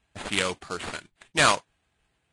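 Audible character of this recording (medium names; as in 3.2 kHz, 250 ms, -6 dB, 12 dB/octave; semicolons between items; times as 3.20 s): aliases and images of a low sample rate 5.7 kHz, jitter 20%; Vorbis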